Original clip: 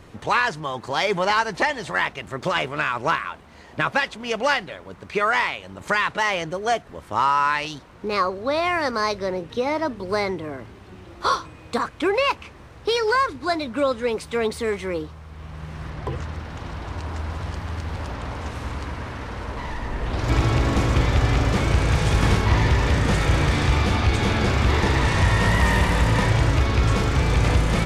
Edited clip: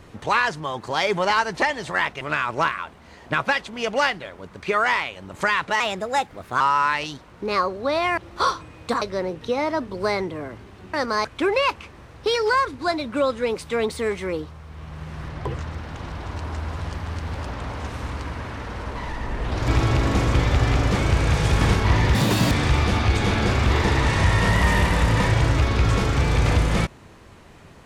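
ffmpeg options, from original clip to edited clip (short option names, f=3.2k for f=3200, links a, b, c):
-filter_complex "[0:a]asplit=10[a][b][c][d][e][f][g][h][i][j];[a]atrim=end=2.212[k];[b]atrim=start=2.678:end=6.274[l];[c]atrim=start=6.27:end=7.22,asetpts=PTS-STARTPTS,asetrate=52038,aresample=44100,atrim=end_sample=35504,asetpts=PTS-STARTPTS[m];[d]atrim=start=7.216:end=8.792[n];[e]atrim=start=11.018:end=11.862[o];[f]atrim=start=9.098:end=11.022[p];[g]atrim=start=8.788:end=9.102[q];[h]atrim=start=11.858:end=22.764[r];[i]atrim=start=22.76:end=23.5,asetpts=PTS-STARTPTS,asetrate=88200,aresample=44100[s];[j]atrim=start=23.496[t];[k][l]acrossfade=d=0.004:c1=hsin:c2=hsin[u];[u][m]acrossfade=d=0.004:c1=hsin:c2=hsin[v];[v][n]acrossfade=d=0.004:c1=hsin:c2=hsin[w];[w][o]acrossfade=d=0.004:c1=hsin:c2=hsin[x];[x][p]acrossfade=d=0.004:c1=hsin:c2=hsin[y];[y][q]acrossfade=d=0.004:c1=hsin:c2=hsin[z];[z][r]acrossfade=d=0.004:c1=hsin:c2=hsin[aa];[aa][s]acrossfade=d=0.004:c1=hsin:c2=hsin[ab];[ab][t]acrossfade=d=0.004:c1=hsin:c2=hsin"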